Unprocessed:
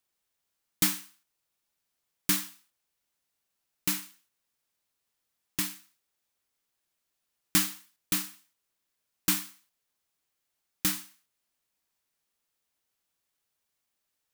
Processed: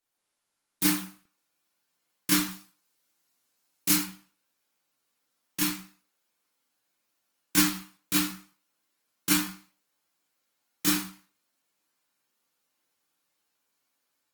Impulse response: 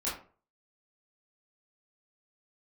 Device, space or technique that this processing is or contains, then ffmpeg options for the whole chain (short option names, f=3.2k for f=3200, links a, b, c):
far-field microphone of a smart speaker: -filter_complex "[0:a]asettb=1/sr,asplit=3[a][b][c];[a]atrim=end=2.484[d];[b]atrim=start=2.48:end=4.02,asetpts=PTS-STARTPTS,afade=t=in:d=0.004:c=qsin,afade=t=out:st=1.536:d=0.004:c=qsin,bass=f=250:g=2,treble=f=4k:g=5[e];[c]atrim=start=4.016[f];[d][e]acrossfade=d=0.004:c1=hsin:c2=qsin[g];[g][f]acrossfade=d=0.004:c1=qsin:c2=hsin[h];[1:a]atrim=start_sample=2205[i];[h][i]afir=irnorm=-1:irlink=0,highpass=f=110:w=0.5412,highpass=f=110:w=1.3066,dynaudnorm=f=100:g=3:m=5dB,volume=-4.5dB" -ar 48000 -c:a libopus -b:a 24k